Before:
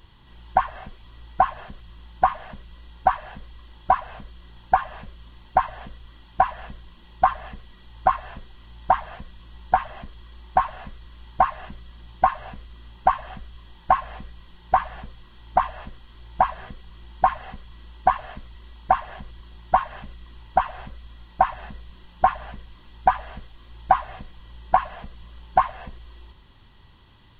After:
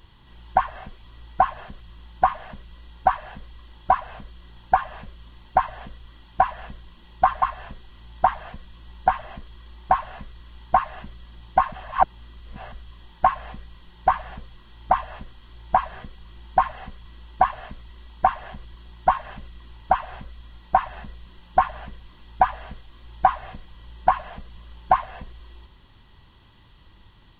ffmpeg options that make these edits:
-filter_complex "[0:a]asplit=4[a][b][c][d];[a]atrim=end=7.422[e];[b]atrim=start=8.078:end=12.382[f];[c]atrim=start=12.378:end=13.382,asetpts=PTS-STARTPTS,areverse[g];[d]atrim=start=13.378[h];[e][f]acrossfade=d=0.004:c1=hsin:c2=hsin[i];[i][g]acrossfade=d=0.004:c1=hsin:c2=hsin[j];[j][h]acrossfade=d=0.004:c1=hsin:c2=hsin"

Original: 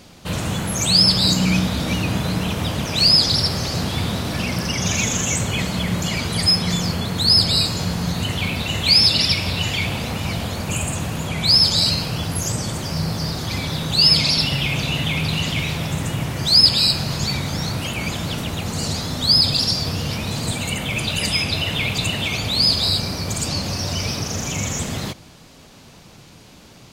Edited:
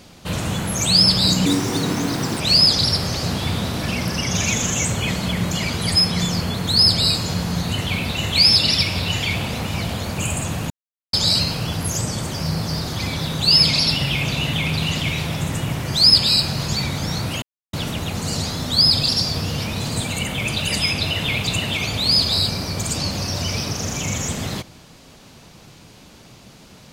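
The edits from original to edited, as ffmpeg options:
-filter_complex "[0:a]asplit=7[a][b][c][d][e][f][g];[a]atrim=end=1.464[h];[b]atrim=start=1.46:end=2.91,asetpts=PTS-STARTPTS,asetrate=67914,aresample=44100[i];[c]atrim=start=2.906:end=11.21,asetpts=PTS-STARTPTS,afade=t=out:st=8.3:d=0.004:c=hsin[j];[d]atrim=start=11.21:end=11.64,asetpts=PTS-STARTPTS,volume=0[k];[e]atrim=start=11.64:end=17.93,asetpts=PTS-STARTPTS,afade=t=in:d=0.004:c=hsin,afade=t=out:st=6.286:d=0.004:c=hsin[l];[f]atrim=start=17.93:end=18.24,asetpts=PTS-STARTPTS,volume=0[m];[g]atrim=start=18.24,asetpts=PTS-STARTPTS,afade=t=in:d=0.004:c=hsin[n];[h][i]acrossfade=d=0.004:c1=hsin:c2=hsin[o];[j][k][l][m][n]concat=n=5:v=0:a=1[p];[o][p]acrossfade=d=0.004:c1=hsin:c2=hsin"

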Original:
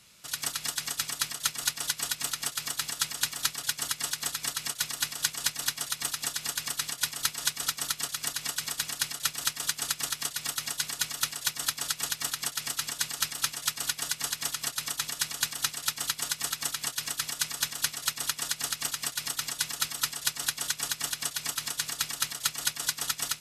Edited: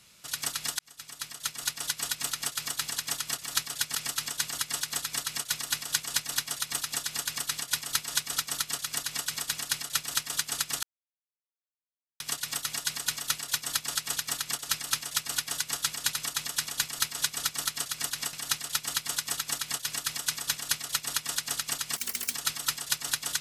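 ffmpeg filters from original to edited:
-filter_complex "[0:a]asplit=14[a][b][c][d][e][f][g][h][i][j][k][l][m][n];[a]atrim=end=0.79,asetpts=PTS-STARTPTS,afade=t=out:st=0.786:d=0.004:c=hsin[o];[b]atrim=start=0.79:end=2.942,asetpts=PTS-STARTPTS,afade=t=in:d=1.61:c=qsin[p];[c]atrim=start=14.278:end=14.762[q];[d]atrim=start=3.298:end=3.832[r];[e]atrim=start=12.558:end=13.142[s];[f]atrim=start=3.828:end=10.13,asetpts=PTS-STARTPTS,afade=t=out:st=6.298:d=0.004:c=hsin,apad=pad_dur=1.37[t];[g]atrim=start=10.13:end=12.562,asetpts=PTS-STARTPTS,afade=t=in:d=0.004:c=hsin[u];[h]atrim=start=13.138:end=14.282[v];[i]atrim=start=2.938:end=3.302[w];[j]atrim=start=14.758:end=15.462[x];[k]atrim=start=7.058:end=8.562[y];[l]atrim=start=15.458:end=19.094[z];[m]atrim=start=19.09:end=19.69,asetpts=PTS-STARTPTS,asetrate=69678,aresample=44100[aa];[n]atrim=start=19.686[ab];[o][p]concat=n=2:v=0:a=1[ac];[ac][q]acrossfade=d=0.004:c1=hsin:c2=hsin[ad];[ad][r]acrossfade=d=0.004:c1=hsin:c2=hsin[ae];[ae][s]acrossfade=d=0.004:c1=hsin:c2=hsin[af];[t][u]concat=n=2:v=0:a=1[ag];[af][ag]acrossfade=d=0.004:c1=hsin:c2=hsin[ah];[ah][v]acrossfade=d=0.004:c1=hsin:c2=hsin[ai];[ai][w]acrossfade=d=0.004:c1=hsin:c2=hsin[aj];[aj][x]acrossfade=d=0.004:c1=hsin:c2=hsin[ak];[ak][y]acrossfade=d=0.004:c1=hsin:c2=hsin[al];[al][z]acrossfade=d=0.004:c1=hsin:c2=hsin[am];[am][aa]acrossfade=d=0.004:c1=hsin:c2=hsin[an];[an][ab]acrossfade=d=0.004:c1=hsin:c2=hsin"

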